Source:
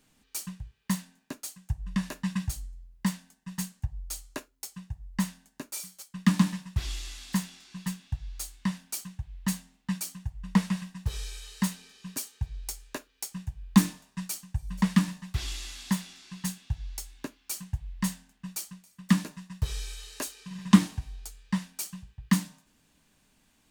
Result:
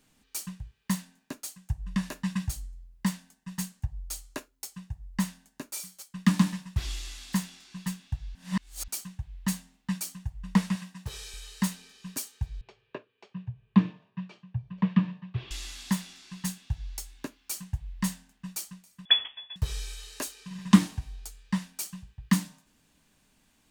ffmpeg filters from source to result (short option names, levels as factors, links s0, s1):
-filter_complex "[0:a]asettb=1/sr,asplit=3[s0][s1][s2];[s0]atrim=end=10.754[s3];[s1]atrim=start=10.75:end=11.34,asetpts=PTS-STARTPTS,afade=t=in:d=0.004:c=qsin,afade=t=out:st=0.586:d=0.004:c=qsin,highpass=f=180:p=1[s4];[s2]atrim=start=11.336[s5];[s3][s4]acrossfade=d=0.004:c1=hsin:c2=qsin[s6];[s6][s5]acrossfade=d=0.004:c1=qsin:c2=hsin,asettb=1/sr,asplit=3[s7][s8][s9];[s7]atrim=end=12.614[s10];[s8]atrim=start=12.61:end=15.51,asetpts=PTS-STARTPTS,afade=t=in:d=0.004:c=qsin,afade=t=out:st=2.896:d=0.004:c=qsin,highpass=f=110:w=0.5412,highpass=f=110:w=1.3066,equalizer=f=120:t=q:w=4:g=9,equalizer=f=270:t=q:w=4:g=-9,equalizer=f=420:t=q:w=4:g=5,equalizer=f=810:t=q:w=4:g=-6,equalizer=f=1400:t=q:w=4:g=-8,equalizer=f=2000:t=q:w=4:g=-8,lowpass=f=2700:w=0.5412,lowpass=f=2700:w=1.3066[s11];[s9]atrim=start=15.506[s12];[s10][s11]acrossfade=d=0.004:c1=hsin:c2=qsin[s13];[s13][s12]acrossfade=d=0.004:c1=qsin:c2=hsin,asettb=1/sr,asplit=3[s14][s15][s16];[s14]atrim=end=19.054[s17];[s15]atrim=start=19.05:end=19.56,asetpts=PTS-STARTPTS,afade=t=in:d=0.004:c=qsin,afade=t=out:st=0.506:d=0.004:c=qsin,lowpass=f=3100:t=q:w=0.5098,lowpass=f=3100:t=q:w=0.6013,lowpass=f=3100:t=q:w=0.9,lowpass=f=3100:t=q:w=2.563,afreqshift=-3600[s18];[s16]atrim=start=19.556[s19];[s17][s18]acrossfade=d=0.004:c1=hsin:c2=qsin[s20];[s20][s19]acrossfade=d=0.004:c1=qsin:c2=hsin,asplit=3[s21][s22][s23];[s21]atrim=end=8.352[s24];[s22]atrim=start=8.348:end=8.882,asetpts=PTS-STARTPTS,areverse[s25];[s23]atrim=start=8.878[s26];[s24][s25]acrossfade=d=0.004:c1=hsin:c2=hsin[s27];[s27][s26]acrossfade=d=0.004:c1=hsin:c2=hsin"